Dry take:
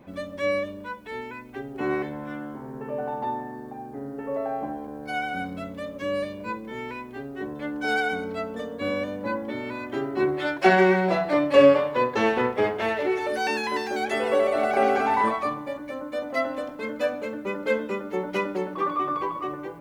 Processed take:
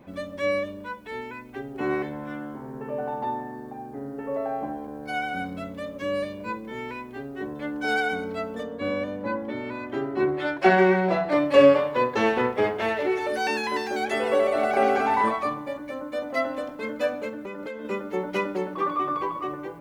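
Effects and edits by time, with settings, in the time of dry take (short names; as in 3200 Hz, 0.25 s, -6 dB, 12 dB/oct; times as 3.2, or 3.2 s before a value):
8.63–11.32 high shelf 4400 Hz -8 dB
17.29–17.85 compressor 12:1, threshold -31 dBFS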